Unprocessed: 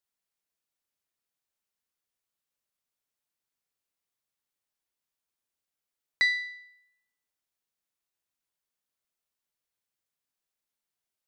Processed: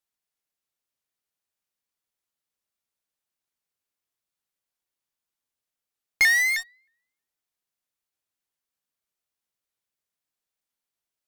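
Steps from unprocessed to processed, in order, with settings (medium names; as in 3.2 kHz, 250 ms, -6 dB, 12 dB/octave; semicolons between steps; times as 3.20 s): in parallel at -9 dB: fuzz box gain 54 dB, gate -49 dBFS; on the sum: vibrato with a chosen wave saw up 3.2 Hz, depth 160 cents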